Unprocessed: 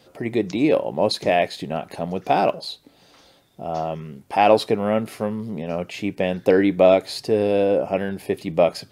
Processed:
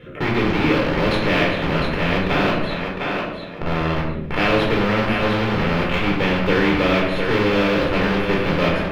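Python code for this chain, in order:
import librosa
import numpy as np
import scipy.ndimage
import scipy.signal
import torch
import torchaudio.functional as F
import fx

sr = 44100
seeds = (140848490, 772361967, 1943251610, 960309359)

p1 = fx.fixed_phaser(x, sr, hz=2000.0, stages=4)
p2 = fx.schmitt(p1, sr, flips_db=-30.5)
p3 = p1 + (p2 * 10.0 ** (-3.0 / 20.0))
p4 = fx.air_absorb(p3, sr, metres=340.0)
p5 = p4 + fx.echo_thinned(p4, sr, ms=705, feedback_pct=24, hz=480.0, wet_db=-7.0, dry=0)
p6 = fx.room_shoebox(p5, sr, seeds[0], volume_m3=760.0, walls='furnished', distance_m=4.3)
p7 = fx.spectral_comp(p6, sr, ratio=2.0)
y = p7 * 10.0 ** (-3.5 / 20.0)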